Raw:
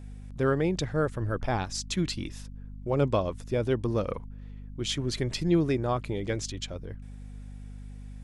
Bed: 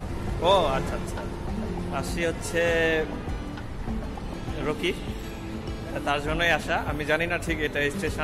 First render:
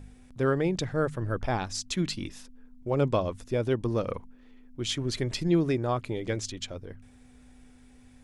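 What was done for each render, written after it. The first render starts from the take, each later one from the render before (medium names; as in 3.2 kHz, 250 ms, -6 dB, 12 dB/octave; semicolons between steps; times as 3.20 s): de-hum 50 Hz, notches 4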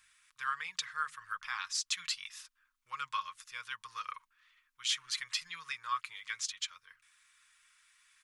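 elliptic high-pass 1.1 kHz, stop band 40 dB; comb 6.4 ms, depth 38%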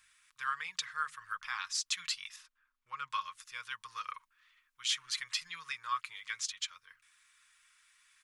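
2.36–3.10 s: treble shelf 3.7 kHz -11 dB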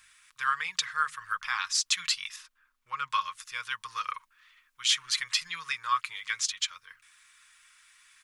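trim +7.5 dB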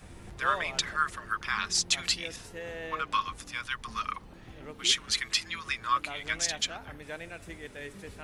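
add bed -16.5 dB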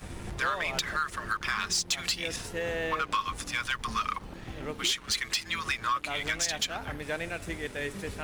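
compression 5:1, threshold -32 dBFS, peak gain reduction 11 dB; waveshaping leveller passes 2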